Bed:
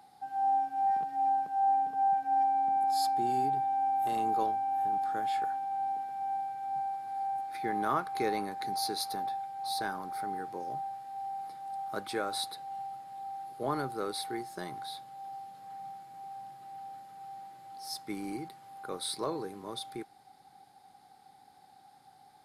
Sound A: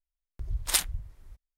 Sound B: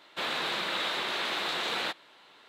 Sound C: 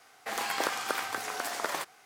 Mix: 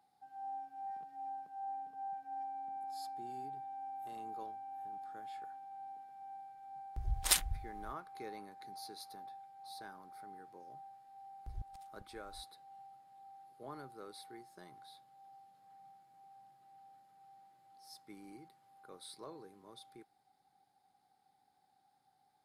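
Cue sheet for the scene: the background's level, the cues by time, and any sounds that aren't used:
bed -15.5 dB
6.57 s: add A -4 dB
11.07 s: add A -10 dB + inverted gate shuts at -24 dBFS, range -36 dB
not used: B, C

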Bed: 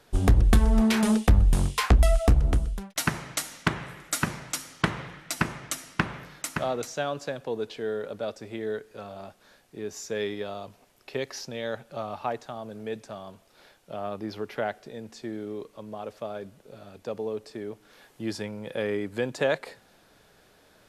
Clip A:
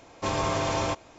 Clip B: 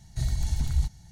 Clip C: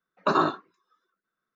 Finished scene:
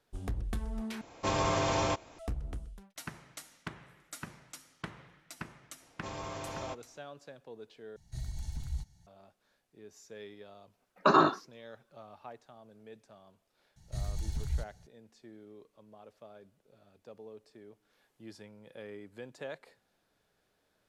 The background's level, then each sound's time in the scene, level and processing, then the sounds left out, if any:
bed -17 dB
1.01 s: replace with A -2.5 dB
5.80 s: add A -14 dB
7.96 s: replace with B -12 dB
10.79 s: add C -0.5 dB
13.76 s: add B -8.5 dB

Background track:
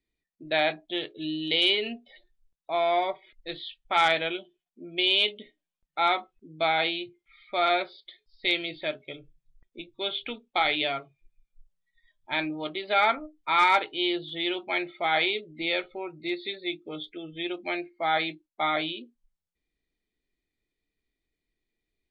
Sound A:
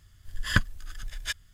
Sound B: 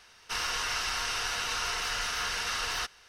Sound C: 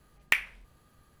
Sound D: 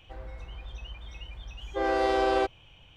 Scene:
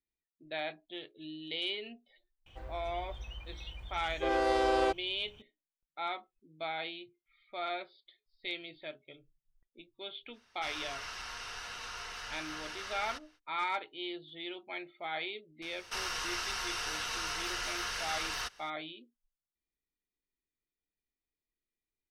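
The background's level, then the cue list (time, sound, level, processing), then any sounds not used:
background track -13 dB
2.46 s: add D -3.5 dB + treble shelf 7.5 kHz +8.5 dB
10.32 s: add B -10 dB, fades 0.05 s + treble shelf 6.5 kHz -7.5 dB
15.62 s: add B -5 dB + three bands compressed up and down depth 40%
not used: A, C

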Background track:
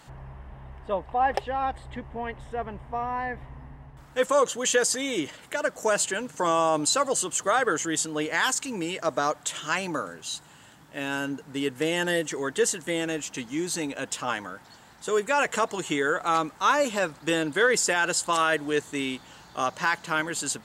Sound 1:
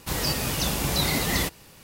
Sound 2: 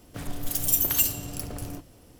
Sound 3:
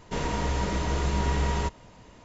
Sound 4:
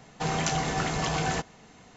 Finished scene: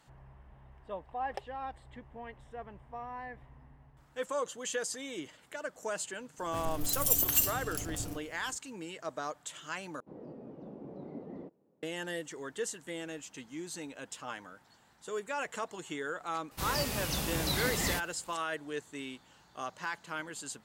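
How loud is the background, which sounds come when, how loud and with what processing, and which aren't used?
background track -12.5 dB
6.38 s: add 2 -4.5 dB
10.00 s: replace with 1 -12.5 dB + Butterworth band-pass 340 Hz, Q 0.91
16.51 s: add 1 -8 dB
not used: 3, 4

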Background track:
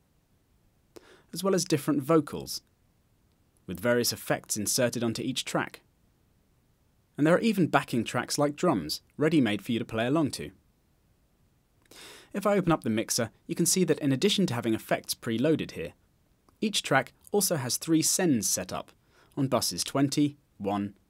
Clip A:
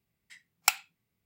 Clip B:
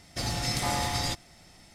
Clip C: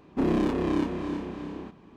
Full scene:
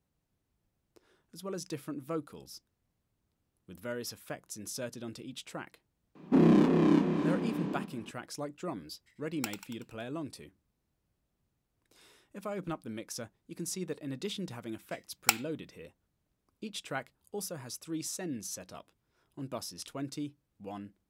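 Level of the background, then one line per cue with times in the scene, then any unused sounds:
background track -13 dB
6.15 s: add C -1 dB + resonant low shelf 120 Hz -12.5 dB, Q 3
8.76 s: add A -14.5 dB + frequency-shifting echo 94 ms, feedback 53%, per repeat +48 Hz, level -8 dB
14.61 s: add A -1.5 dB
not used: B

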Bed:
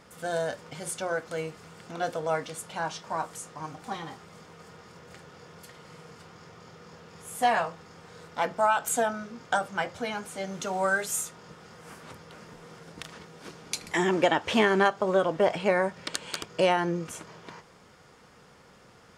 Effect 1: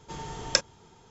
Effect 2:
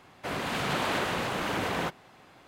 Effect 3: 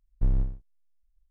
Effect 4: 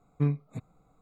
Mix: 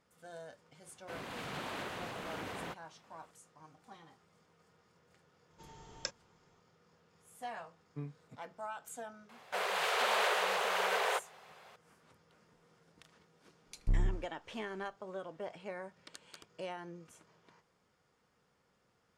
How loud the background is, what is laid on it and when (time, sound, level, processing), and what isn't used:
bed -19.5 dB
0.84 s: add 2 -12.5 dB
5.50 s: add 1 -16.5 dB
7.76 s: add 4 -14.5 dB + high-pass 150 Hz
9.29 s: add 2 -1 dB + steep high-pass 400 Hz 96 dB/octave
13.66 s: add 3 -6 dB

